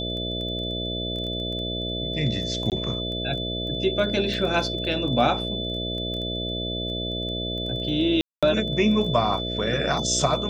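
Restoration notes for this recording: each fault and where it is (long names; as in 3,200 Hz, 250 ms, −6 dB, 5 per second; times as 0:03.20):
mains buzz 60 Hz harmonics 11 −31 dBFS
surface crackle 12 per second
whistle 3,500 Hz −30 dBFS
0:02.70–0:02.72: drop-out 18 ms
0:08.21–0:08.43: drop-out 216 ms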